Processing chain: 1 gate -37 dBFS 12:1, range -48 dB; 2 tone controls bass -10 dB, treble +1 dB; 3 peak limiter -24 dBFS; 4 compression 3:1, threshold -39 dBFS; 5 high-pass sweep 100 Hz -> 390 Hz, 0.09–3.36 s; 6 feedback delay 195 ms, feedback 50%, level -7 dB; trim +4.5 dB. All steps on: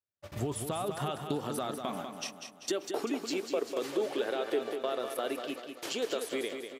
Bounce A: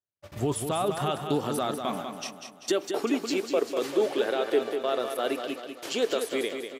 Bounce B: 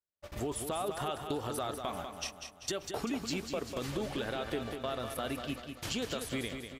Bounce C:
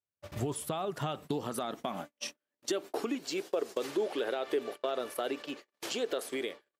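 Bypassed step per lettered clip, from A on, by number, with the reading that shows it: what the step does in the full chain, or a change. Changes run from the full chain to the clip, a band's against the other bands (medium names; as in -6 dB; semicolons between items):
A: 4, mean gain reduction 4.5 dB; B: 5, 500 Hz band -4.5 dB; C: 6, echo-to-direct -5.5 dB to none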